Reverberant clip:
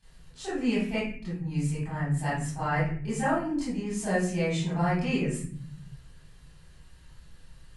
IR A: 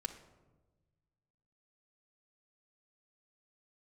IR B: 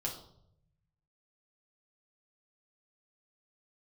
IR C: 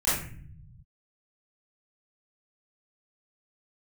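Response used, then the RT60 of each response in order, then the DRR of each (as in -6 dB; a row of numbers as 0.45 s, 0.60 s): C; 1.2 s, 0.70 s, 0.50 s; 3.0 dB, -2.0 dB, -12.5 dB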